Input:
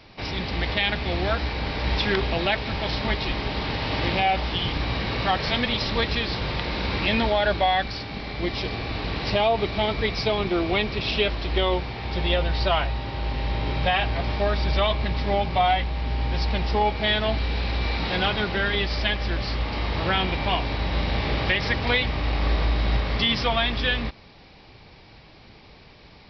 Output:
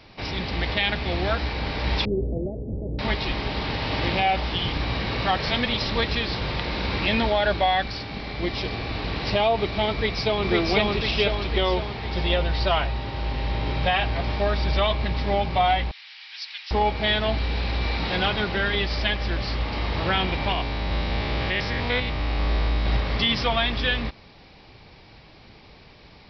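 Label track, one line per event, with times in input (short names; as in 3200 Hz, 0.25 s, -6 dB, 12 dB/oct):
2.050000	2.990000	steep low-pass 520 Hz
9.920000	10.460000	echo throw 0.5 s, feedback 55%, level -0.5 dB
15.910000	16.710000	Bessel high-pass 2600 Hz, order 4
20.520000	22.860000	stepped spectrum every 0.1 s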